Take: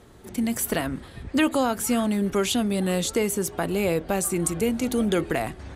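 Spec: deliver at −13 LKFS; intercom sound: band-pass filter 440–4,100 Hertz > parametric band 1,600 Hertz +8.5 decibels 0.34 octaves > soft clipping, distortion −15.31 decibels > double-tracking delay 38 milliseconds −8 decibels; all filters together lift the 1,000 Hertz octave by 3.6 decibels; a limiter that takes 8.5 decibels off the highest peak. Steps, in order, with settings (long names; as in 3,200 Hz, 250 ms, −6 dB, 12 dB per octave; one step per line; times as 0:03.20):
parametric band 1,000 Hz +4.5 dB
brickwall limiter −17.5 dBFS
band-pass filter 440–4,100 Hz
parametric band 1,600 Hz +8.5 dB 0.34 octaves
soft clipping −24 dBFS
double-tracking delay 38 ms −8 dB
level +20 dB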